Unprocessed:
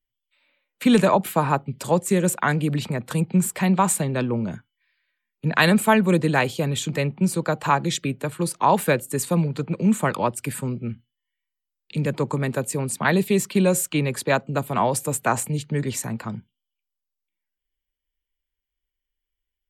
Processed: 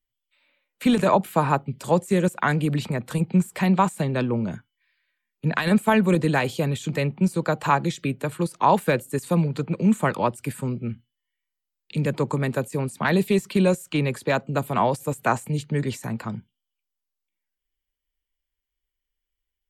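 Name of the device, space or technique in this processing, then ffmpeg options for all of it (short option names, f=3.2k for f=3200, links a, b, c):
de-esser from a sidechain: -filter_complex "[0:a]asplit=2[a][b];[b]highpass=6.7k,apad=whole_len=868636[c];[a][c]sidechaincompress=threshold=-37dB:ratio=16:attack=0.61:release=28"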